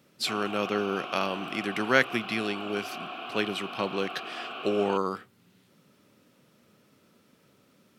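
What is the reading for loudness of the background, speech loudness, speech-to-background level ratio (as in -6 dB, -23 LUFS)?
-38.0 LUFS, -29.5 LUFS, 8.5 dB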